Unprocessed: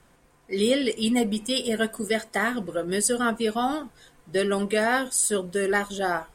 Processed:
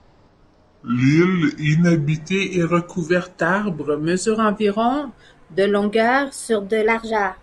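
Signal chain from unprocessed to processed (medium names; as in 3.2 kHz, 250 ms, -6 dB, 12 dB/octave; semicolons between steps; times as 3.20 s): gliding tape speed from 55% -> 116%; low-pass 6.9 kHz 12 dB/octave; treble shelf 3.7 kHz -10 dB; trim +7 dB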